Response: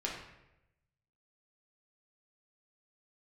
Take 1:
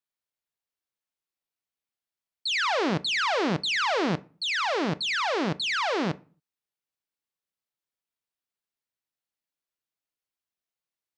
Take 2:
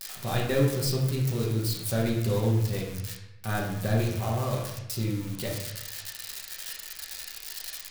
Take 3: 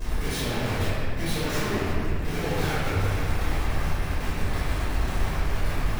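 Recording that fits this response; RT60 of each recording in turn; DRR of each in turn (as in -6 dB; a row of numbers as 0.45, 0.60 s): 2; 0.40, 0.90, 2.4 s; 14.5, -3.5, -14.5 dB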